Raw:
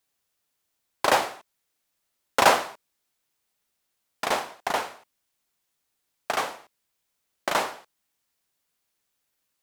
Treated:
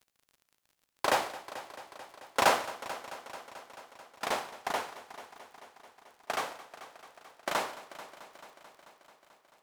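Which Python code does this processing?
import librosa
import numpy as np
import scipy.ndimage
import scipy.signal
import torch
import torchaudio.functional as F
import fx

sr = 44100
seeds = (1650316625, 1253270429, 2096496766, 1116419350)

y = fx.dmg_crackle(x, sr, seeds[0], per_s=40.0, level_db=-41.0)
y = fx.echo_heads(y, sr, ms=219, heads='first and second', feedback_pct=66, wet_db=-18)
y = F.gain(torch.from_numpy(y), -6.5).numpy()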